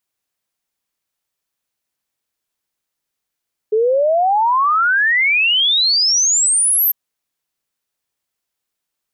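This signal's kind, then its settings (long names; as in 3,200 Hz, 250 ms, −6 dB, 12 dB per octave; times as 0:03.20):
exponential sine sweep 420 Hz → 13,000 Hz 3.20 s −11.5 dBFS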